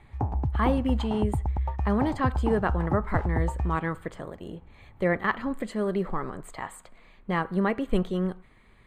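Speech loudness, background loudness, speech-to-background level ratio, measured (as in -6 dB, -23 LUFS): -29.0 LUFS, -30.5 LUFS, 1.5 dB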